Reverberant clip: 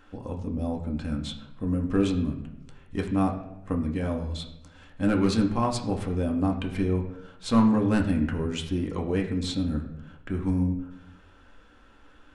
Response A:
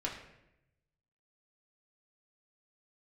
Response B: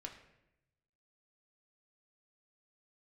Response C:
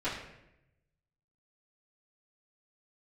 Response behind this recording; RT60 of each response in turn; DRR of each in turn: B; 0.85, 0.85, 0.85 s; -3.5, 1.5, -13.0 dB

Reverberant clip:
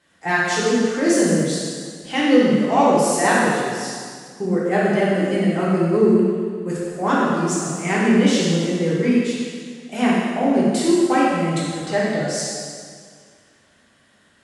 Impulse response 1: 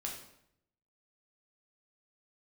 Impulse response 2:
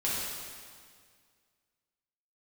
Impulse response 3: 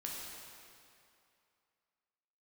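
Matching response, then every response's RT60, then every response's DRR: 2; 0.75, 1.9, 2.6 s; -1.5, -8.5, -3.5 dB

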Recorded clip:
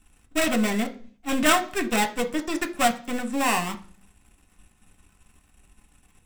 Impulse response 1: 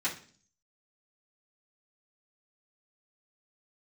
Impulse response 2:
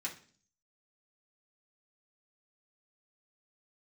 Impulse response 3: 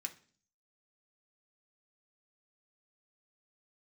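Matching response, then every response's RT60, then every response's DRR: 3; 0.45, 0.45, 0.45 s; -10.5, -5.0, 3.0 dB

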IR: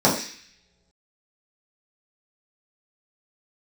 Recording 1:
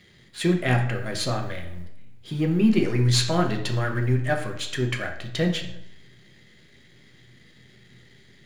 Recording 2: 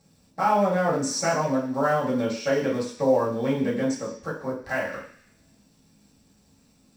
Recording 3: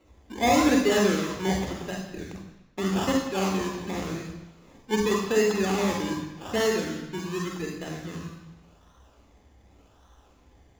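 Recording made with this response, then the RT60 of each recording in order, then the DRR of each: 2; 0.75 s, not exponential, 1.0 s; 2.0, -7.0, -0.5 dB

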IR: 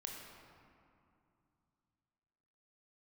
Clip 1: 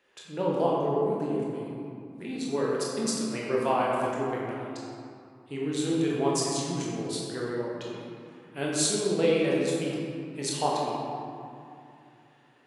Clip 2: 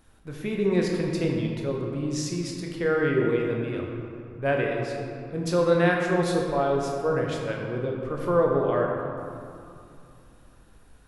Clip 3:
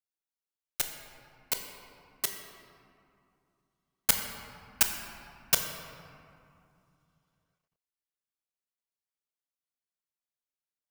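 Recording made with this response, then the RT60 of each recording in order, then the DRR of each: 2; 2.6, 2.6, 2.6 s; -5.0, -0.5, 4.0 dB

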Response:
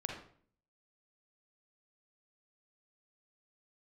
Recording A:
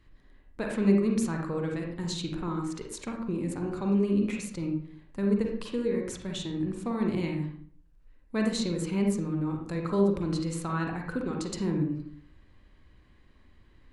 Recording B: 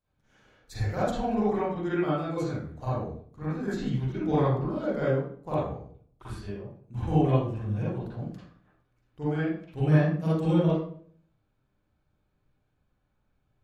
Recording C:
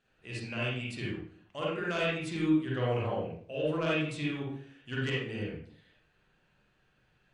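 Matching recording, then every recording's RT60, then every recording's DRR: A; 0.50, 0.50, 0.50 s; 1.0, -10.5, -6.0 dB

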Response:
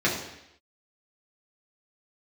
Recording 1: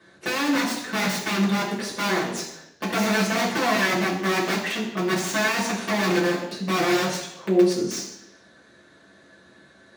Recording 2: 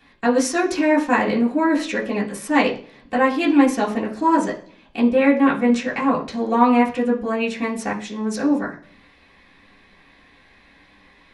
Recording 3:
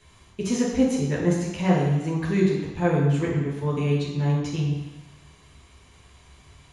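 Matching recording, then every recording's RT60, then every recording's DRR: 1; 0.80, 0.45, 1.1 s; -6.5, -7.0, -5.0 dB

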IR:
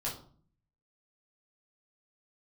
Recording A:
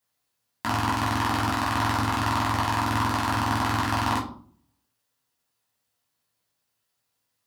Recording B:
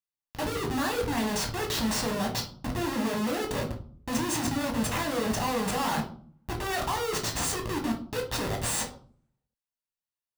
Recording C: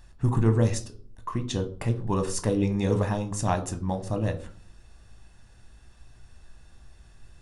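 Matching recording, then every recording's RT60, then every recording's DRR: A; 0.50, 0.50, 0.50 s; -5.5, 1.0, 7.0 dB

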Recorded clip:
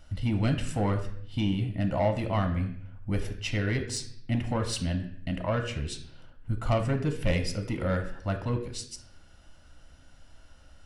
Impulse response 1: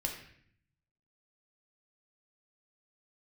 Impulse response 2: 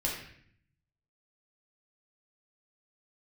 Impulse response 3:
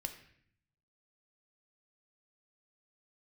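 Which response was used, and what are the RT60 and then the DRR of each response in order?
3; 0.60, 0.60, 0.60 s; 1.0, -3.5, 6.0 dB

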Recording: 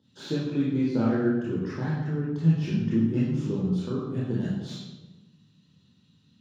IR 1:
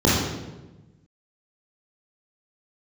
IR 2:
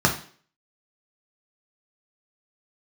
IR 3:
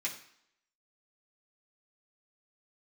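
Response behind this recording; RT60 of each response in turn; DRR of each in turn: 1; 1.1, 0.45, 0.70 s; -6.0, 0.0, -5.5 dB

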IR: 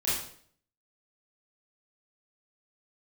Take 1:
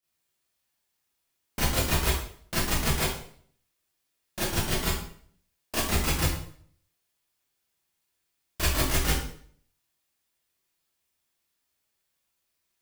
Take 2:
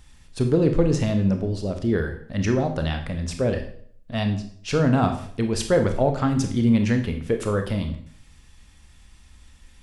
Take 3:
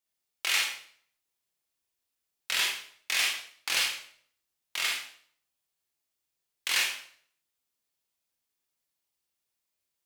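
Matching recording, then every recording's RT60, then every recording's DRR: 1; 0.55, 0.55, 0.55 s; -10.0, 5.5, -2.0 dB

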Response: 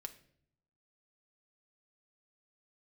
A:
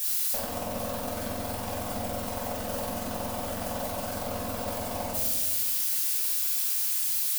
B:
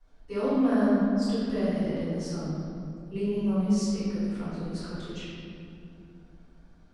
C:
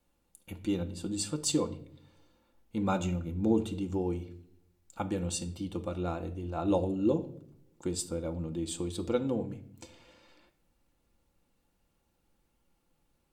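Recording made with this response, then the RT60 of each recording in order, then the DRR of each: C; 1.3, 2.6, 0.65 s; -9.0, -18.5, 4.5 dB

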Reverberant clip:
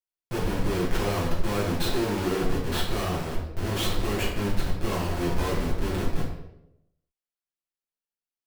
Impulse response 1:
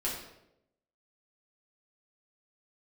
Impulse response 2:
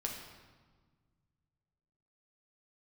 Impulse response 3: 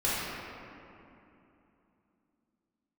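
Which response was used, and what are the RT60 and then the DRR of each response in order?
1; 0.85, 1.5, 2.9 s; -7.0, -0.5, -10.0 dB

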